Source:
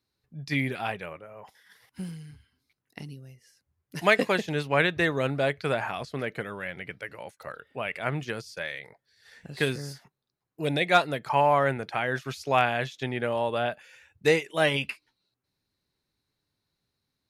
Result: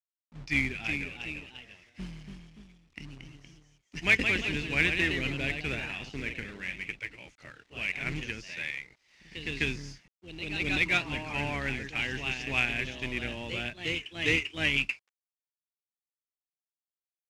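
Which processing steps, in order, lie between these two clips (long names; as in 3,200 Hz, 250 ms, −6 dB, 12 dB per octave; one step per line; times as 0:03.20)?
sub-octave generator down 2 octaves, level −2 dB
drawn EQ curve 130 Hz 0 dB, 320 Hz +4 dB, 540 Hz −10 dB, 1,200 Hz −9 dB, 2,400 Hz +14 dB, 4,000 Hz +2 dB, 6,300 Hz +12 dB, 12,000 Hz −6 dB
log-companded quantiser 4 bits
delay with pitch and tempo change per echo 396 ms, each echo +1 semitone, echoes 2, each echo −6 dB
high-frequency loss of the air 93 metres
level −7.5 dB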